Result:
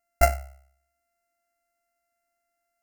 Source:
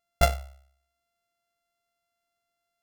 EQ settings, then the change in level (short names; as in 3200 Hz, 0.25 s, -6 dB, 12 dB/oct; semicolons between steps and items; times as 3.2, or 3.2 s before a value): bell 160 Hz -2.5 dB 2.1 oct; bell 1100 Hz -4 dB 0.41 oct; fixed phaser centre 710 Hz, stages 8; +4.5 dB